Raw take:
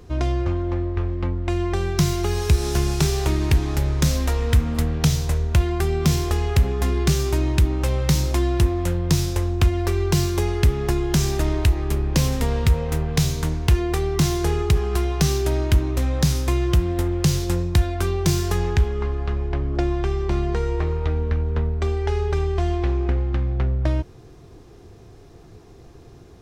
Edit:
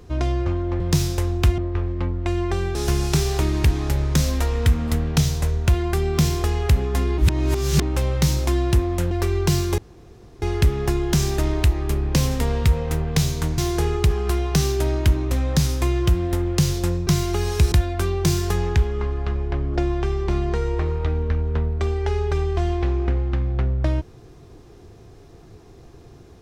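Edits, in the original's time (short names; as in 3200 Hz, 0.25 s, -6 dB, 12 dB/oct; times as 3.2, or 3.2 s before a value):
1.97–2.62 move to 17.73
7.05–7.69 reverse
8.98–9.76 move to 0.8
10.43 insert room tone 0.64 s
13.59–14.24 cut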